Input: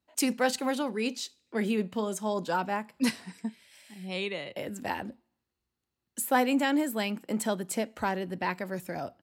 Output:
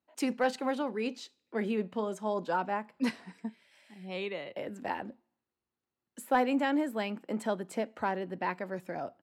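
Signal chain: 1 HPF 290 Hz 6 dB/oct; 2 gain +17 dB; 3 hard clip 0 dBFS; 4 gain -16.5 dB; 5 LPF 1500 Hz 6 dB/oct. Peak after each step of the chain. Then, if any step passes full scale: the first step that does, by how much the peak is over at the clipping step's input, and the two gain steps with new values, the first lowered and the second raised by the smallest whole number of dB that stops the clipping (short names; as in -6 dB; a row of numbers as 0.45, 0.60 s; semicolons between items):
-13.5, +3.5, 0.0, -16.5, -17.0 dBFS; step 2, 3.5 dB; step 2 +13 dB, step 4 -12.5 dB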